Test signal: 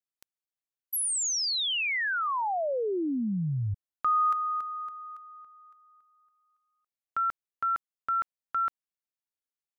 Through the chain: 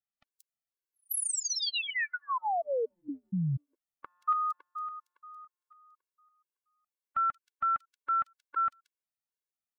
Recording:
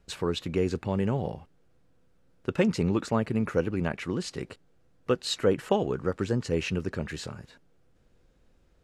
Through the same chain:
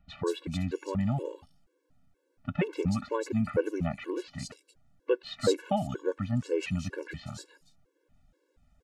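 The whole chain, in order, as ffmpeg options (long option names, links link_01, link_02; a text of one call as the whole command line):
ffmpeg -i in.wav -filter_complex "[0:a]acrossover=split=3700[link_01][link_02];[link_02]adelay=180[link_03];[link_01][link_03]amix=inputs=2:normalize=0,afftfilt=real='re*gt(sin(2*PI*2.1*pts/sr)*(1-2*mod(floor(b*sr/1024/290),2)),0)':imag='im*gt(sin(2*PI*2.1*pts/sr)*(1-2*mod(floor(b*sr/1024/290),2)),0)':win_size=1024:overlap=0.75" out.wav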